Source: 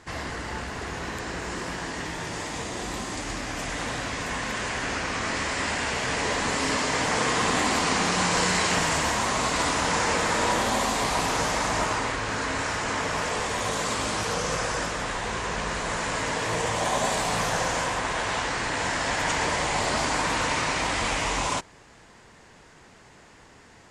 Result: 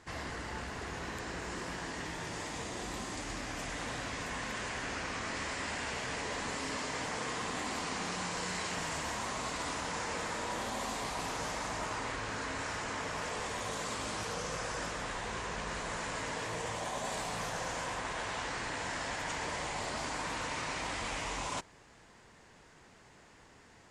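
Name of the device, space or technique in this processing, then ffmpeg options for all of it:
compression on the reversed sound: -af "areverse,acompressor=threshold=-27dB:ratio=6,areverse,volume=-7dB"

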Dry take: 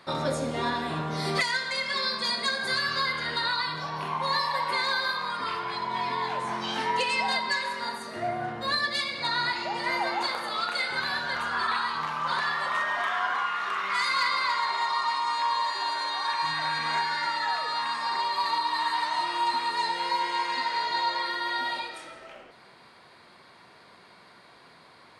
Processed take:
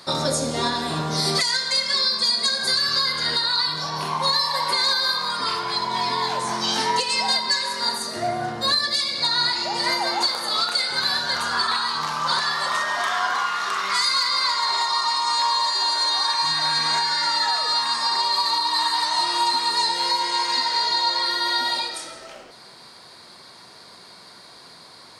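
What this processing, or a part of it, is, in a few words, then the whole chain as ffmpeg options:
over-bright horn tweeter: -af "highshelf=frequency=3600:width_type=q:width=1.5:gain=9.5,alimiter=limit=-16.5dB:level=0:latency=1:release=354,volume=5.5dB"

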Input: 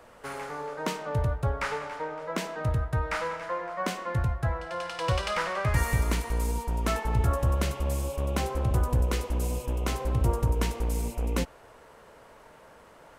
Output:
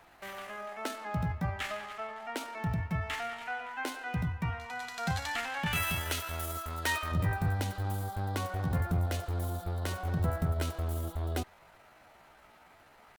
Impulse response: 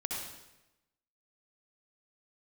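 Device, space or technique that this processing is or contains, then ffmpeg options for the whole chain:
chipmunk voice: -filter_complex "[0:a]asetrate=62367,aresample=44100,atempo=0.707107,asettb=1/sr,asplit=3[link_01][link_02][link_03];[link_01]atrim=end=5.664[link_04];[link_02]atrim=start=5.66:end=7.12,asetpts=PTS-STARTPTS,afade=type=in:duration=0.004:curve=qsin,afade=type=out:start_time=1.456:duration=0.004:curve=qsin,tiltshelf=frequency=660:gain=-7[link_05];[link_03]atrim=start=7.116[link_06];[link_04][link_05]acrossfade=duration=0.004:curve1=hsin:curve2=qsin[link_07];[link_07][link_06]acrossfade=duration=0.004:curve1=qsin:curve2=hsin,volume=-5.5dB"

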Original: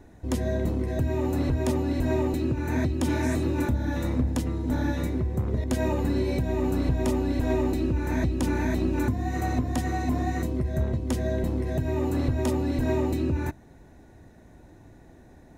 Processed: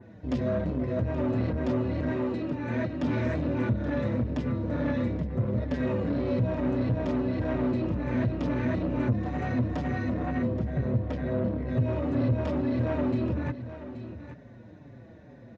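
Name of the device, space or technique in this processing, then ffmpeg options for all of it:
barber-pole flanger into a guitar amplifier: -filter_complex "[0:a]asettb=1/sr,asplit=3[link_01][link_02][link_03];[link_01]atrim=end=2.094[link_04];[link_02]atrim=start=2.09:end=3.03,asetpts=PTS-STARTPTS,afade=type=in:duration=0.004:curve=qsin,afade=type=out:start_time=0.936:duration=0.004:curve=qsin,highpass=frequency=270:poles=1[link_05];[link_03]atrim=start=3.026[link_06];[link_04][link_05]acrossfade=duration=0.004:curve1=hsin:curve2=qsin[link_07];[link_07][link_06]acrossfade=duration=0.004:curve1=qsin:curve2=hsin,asettb=1/sr,asplit=3[link_08][link_09][link_10];[link_08]atrim=end=10.144[link_11];[link_09]atrim=start=10.14:end=11.68,asetpts=PTS-STARTPTS,afade=type=in:duration=0.004:curve=qsin,afade=type=out:start_time=1.536:duration=0.004:curve=qsin,aemphasis=mode=reproduction:type=50fm[link_12];[link_10]atrim=start=11.676[link_13];[link_11][link_12]acrossfade=duration=0.004:curve1=hsin:curve2=qsin[link_14];[link_14][link_13]acrossfade=duration=0.004:curve1=qsin:curve2=hsin,asplit=2[link_15][link_16];[link_16]adelay=5.5,afreqshift=-2.2[link_17];[link_15][link_17]amix=inputs=2:normalize=1,asoftclip=type=tanh:threshold=-28dB,highpass=99,equalizer=frequency=120:width_type=q:width=4:gain=9,equalizer=frequency=220:width_type=q:width=4:gain=5,equalizer=frequency=360:width_type=q:width=4:gain=-4,equalizer=frequency=550:width_type=q:width=4:gain=7,equalizer=frequency=810:width_type=q:width=4:gain=-7,equalizer=frequency=4000:width_type=q:width=4:gain=-3,lowpass=frequency=4600:width=0.5412,lowpass=frequency=4600:width=1.3066,aecho=1:1:827:0.237,adynamicequalizer=threshold=0.00158:dfrequency=2700:dqfactor=0.7:tfrequency=2700:tqfactor=0.7:attack=5:release=100:ratio=0.375:range=2:mode=cutabove:tftype=highshelf,volume=4.5dB"

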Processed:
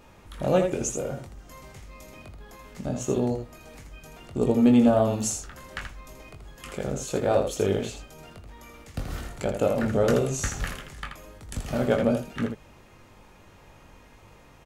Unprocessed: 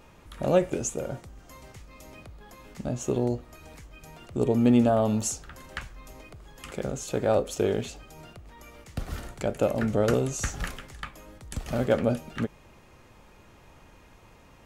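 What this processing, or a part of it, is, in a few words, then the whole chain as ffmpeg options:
slapback doubling: -filter_complex "[0:a]asplit=3[link_01][link_02][link_03];[link_02]adelay=21,volume=-5.5dB[link_04];[link_03]adelay=81,volume=-6.5dB[link_05];[link_01][link_04][link_05]amix=inputs=3:normalize=0"

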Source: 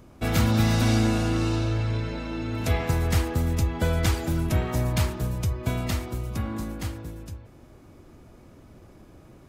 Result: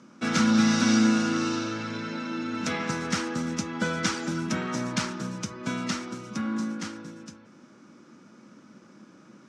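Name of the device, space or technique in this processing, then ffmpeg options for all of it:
television speaker: -af "highpass=frequency=180:width=0.5412,highpass=frequency=180:width=1.3066,equalizer=frequency=210:width_type=q:width=4:gain=8,equalizer=frequency=410:width_type=q:width=4:gain=-6,equalizer=frequency=700:width_type=q:width=4:gain=-10,equalizer=frequency=1400:width_type=q:width=4:gain=8,equalizer=frequency=5700:width_type=q:width=4:gain=8,lowpass=frequency=7800:width=0.5412,lowpass=frequency=7800:width=1.3066"

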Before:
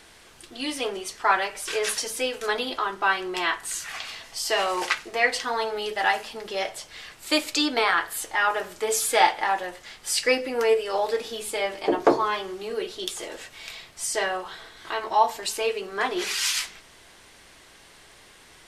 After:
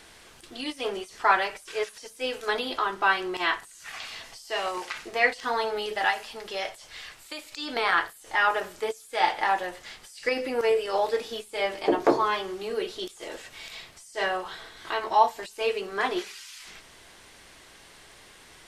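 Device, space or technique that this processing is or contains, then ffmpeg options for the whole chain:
de-esser from a sidechain: -filter_complex "[0:a]asettb=1/sr,asplit=3[link_01][link_02][link_03];[link_01]atrim=end=6.044[link_04];[link_02]atrim=start=6.04:end=7.76,asetpts=PTS-STARTPTS,afade=type=in:duration=0.004:curve=qsin,afade=type=out:start_time=1.716:duration=0.004:curve=qsin,equalizer=frequency=230:width_type=o:width=2.6:gain=-5.5[link_05];[link_03]atrim=start=7.756[link_06];[link_04][link_05]acrossfade=duration=0.004:curve1=hsin:curve2=qsin[link_07];[link_07][link_06]acrossfade=duration=0.004:curve1=qsin:curve2=hsin,asplit=2[link_08][link_09];[link_09]highpass=frequency=6900:width=0.5412,highpass=frequency=6900:width=1.3066,apad=whole_len=823702[link_10];[link_08][link_10]sidechaincompress=threshold=-49dB:ratio=10:attack=1.6:release=33"

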